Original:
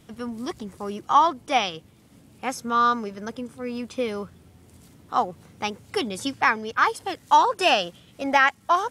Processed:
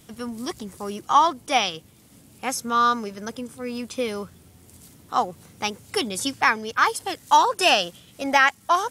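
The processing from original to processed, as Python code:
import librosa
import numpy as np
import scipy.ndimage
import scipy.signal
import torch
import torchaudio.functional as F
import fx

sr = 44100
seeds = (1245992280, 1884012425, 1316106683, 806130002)

y = fx.high_shelf(x, sr, hz=4900.0, db=11.0)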